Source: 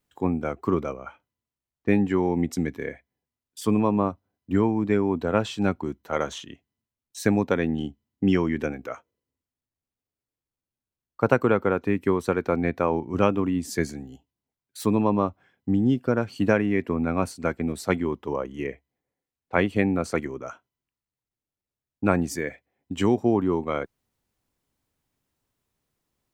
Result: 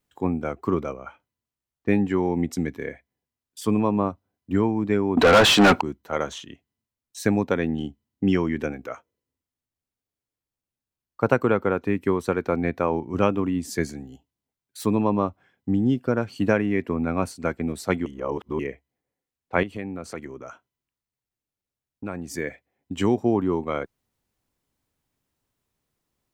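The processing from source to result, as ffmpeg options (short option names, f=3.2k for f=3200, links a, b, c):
-filter_complex "[0:a]asettb=1/sr,asplit=3[a][b][c];[a]atrim=end=5.174[d];[b]atrim=start=5.17:end=5.81,asetpts=PTS-STARTPTS,afade=t=in:d=0.004:c=qsin,afade=t=out:st=0.636:d=0.004:c=qsin,asplit=2[e][f];[f]highpass=f=720:p=1,volume=36dB,asoftclip=type=tanh:threshold=-6dB[g];[e][g]amix=inputs=2:normalize=0,lowpass=f=3.3k:p=1,volume=-6dB[h];[c]atrim=start=5.806[i];[d][h]acrossfade=d=0.004:c1=hsin:c2=qsin[j];[j][i]acrossfade=d=0.004:c1=qsin:c2=hsin,asettb=1/sr,asplit=3[k][l][m];[k]atrim=end=19.634[n];[l]atrim=start=19.63:end=22.34,asetpts=PTS-STARTPTS,afade=t=in:d=0.004:c=qsin,afade=t=out:st=2.706:d=0.004:c=qsin,acompressor=threshold=-36dB:ratio=2:attack=3.2:release=140:knee=1:detection=peak[o];[m]atrim=start=22.336[p];[n][o]acrossfade=d=0.004:c1=hsin:c2=qsin[q];[q][p]acrossfade=d=0.004:c1=qsin:c2=hsin,asplit=3[r][s][t];[r]atrim=end=18.062[u];[s]atrim=start=18.058:end=18.592,asetpts=PTS-STARTPTS,areverse[v];[t]atrim=start=18.588[w];[u][v]acrossfade=d=0.004:c1=hsin:c2=hsin[x];[x][w]acrossfade=d=0.004:c1=hsin:c2=hsin"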